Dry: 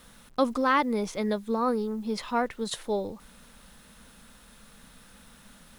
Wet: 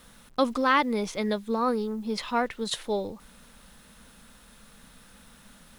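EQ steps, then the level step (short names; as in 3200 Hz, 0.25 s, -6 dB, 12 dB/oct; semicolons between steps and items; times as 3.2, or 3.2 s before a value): dynamic EQ 3100 Hz, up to +5 dB, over -45 dBFS, Q 0.8; 0.0 dB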